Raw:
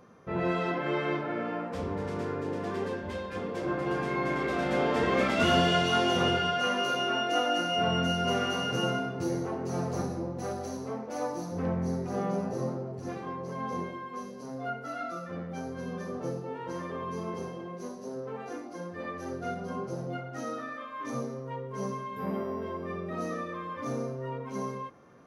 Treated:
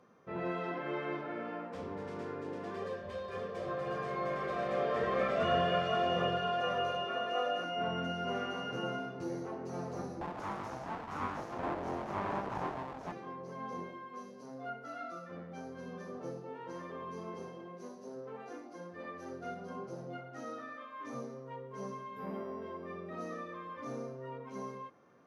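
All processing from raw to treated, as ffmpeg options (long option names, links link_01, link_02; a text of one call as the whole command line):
ffmpeg -i in.wav -filter_complex "[0:a]asettb=1/sr,asplit=3[link_01][link_02][link_03];[link_01]atrim=end=2.764[link_04];[link_02]atrim=start=2.76:end=7.64,asetpts=PTS-STARTPTS,afade=type=in:duration=0.004:curve=qsin,afade=type=out:start_time=4.876:duration=0.004:curve=qsin,aecho=1:1:1.7:0.7,atrim=end_sample=215208,aecho=1:1:520:0.422,atrim=end_sample=215208[link_05];[link_03]atrim=start=7.636[link_06];[link_04][link_05]acrossfade=duration=0.004:curve1=hsin:curve2=qsin[link_07];[link_07][link_06]acrossfade=duration=0.004:curve1=qsin:curve2=hsin,asettb=1/sr,asplit=3[link_08][link_09][link_10];[link_08]atrim=end=10.214[link_11];[link_09]atrim=start=10.21:end=13.12,asetpts=PTS-STARTPTS,afade=type=in:duration=0.004:curve=qsin,afade=type=out:start_time=2.906:duration=0.004:curve=qsin,equalizer=frequency=460:width_type=o:width=1.8:gain=10,aeval=exprs='abs(val(0))':channel_layout=same[link_12];[link_10]atrim=start=13.116[link_13];[link_11][link_12]acrossfade=duration=0.004:curve1=hsin:curve2=qsin[link_14];[link_14][link_13]acrossfade=duration=0.004:curve1=qsin:curve2=hsin,acrossover=split=2600[link_15][link_16];[link_16]acompressor=threshold=-48dB:ratio=4:attack=1:release=60[link_17];[link_15][link_17]amix=inputs=2:normalize=0,highpass=frequency=180:poles=1,highshelf=frequency=9500:gain=-10,volume=-6.5dB" out.wav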